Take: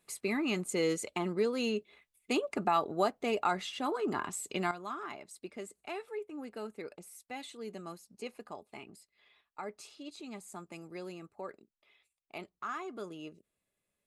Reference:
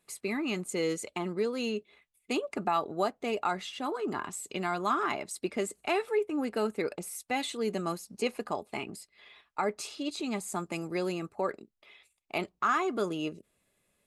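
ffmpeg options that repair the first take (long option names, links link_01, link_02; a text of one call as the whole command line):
ffmpeg -i in.wav -af "asetnsamples=nb_out_samples=441:pad=0,asendcmd='4.71 volume volume 11.5dB',volume=0dB" out.wav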